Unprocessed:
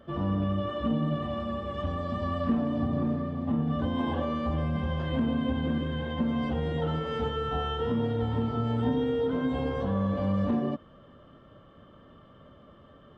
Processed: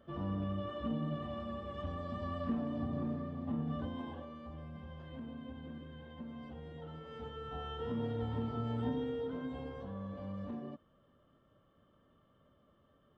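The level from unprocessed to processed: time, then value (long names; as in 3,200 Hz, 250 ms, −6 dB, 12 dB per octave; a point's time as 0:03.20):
0:03.75 −9 dB
0:04.30 −18.5 dB
0:06.89 −18.5 dB
0:08.04 −8.5 dB
0:08.86 −8.5 dB
0:09.88 −15.5 dB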